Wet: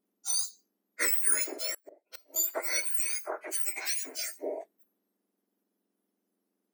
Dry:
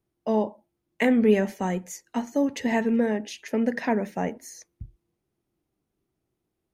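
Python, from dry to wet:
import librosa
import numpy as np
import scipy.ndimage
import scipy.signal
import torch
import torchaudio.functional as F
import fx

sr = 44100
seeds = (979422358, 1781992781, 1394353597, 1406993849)

y = fx.octave_mirror(x, sr, pivot_hz=2000.0)
y = fx.dynamic_eq(y, sr, hz=440.0, q=1.6, threshold_db=-53.0, ratio=4.0, max_db=7)
y = fx.gate_flip(y, sr, shuts_db=-28.0, range_db=-27, at=(1.74, 2.36))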